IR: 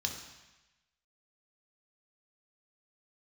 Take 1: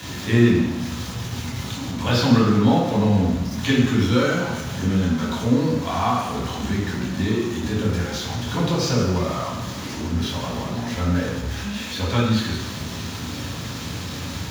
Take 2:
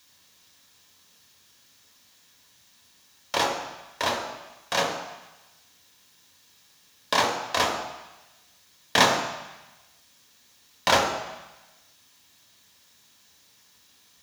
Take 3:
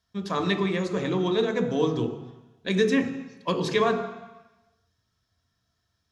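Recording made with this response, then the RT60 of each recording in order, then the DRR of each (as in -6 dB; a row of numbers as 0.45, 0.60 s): 2; 1.0, 1.0, 1.0 s; -6.5, 1.5, 6.0 dB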